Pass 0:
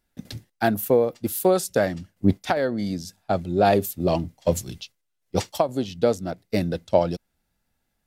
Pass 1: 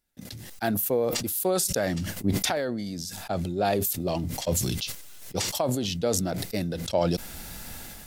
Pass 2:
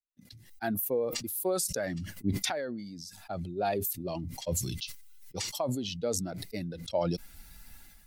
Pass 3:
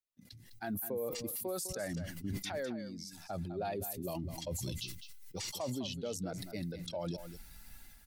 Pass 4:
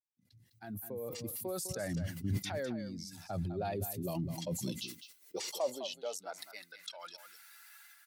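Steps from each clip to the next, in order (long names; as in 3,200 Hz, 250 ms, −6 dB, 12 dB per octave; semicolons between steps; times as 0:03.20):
high-shelf EQ 3,500 Hz +7.5 dB; level that may fall only so fast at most 22 dB per second; level −7.5 dB
spectral dynamics exaggerated over time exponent 1.5; level −3 dB
brickwall limiter −27.5 dBFS, peak gain reduction 10.5 dB; single-tap delay 205 ms −11 dB; level −2.5 dB
fade in at the beginning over 1.70 s; high-pass filter sweep 100 Hz → 1,400 Hz, 0:03.90–0:06.80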